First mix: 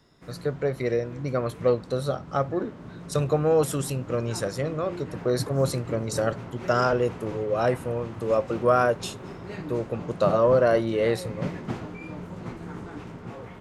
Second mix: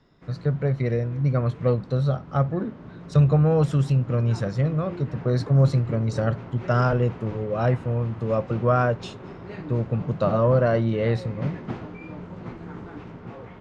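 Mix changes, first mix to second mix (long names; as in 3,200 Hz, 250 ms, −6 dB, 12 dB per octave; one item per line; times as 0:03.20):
speech: add low shelf with overshoot 240 Hz +8.5 dB, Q 1.5
master: add high-frequency loss of the air 140 metres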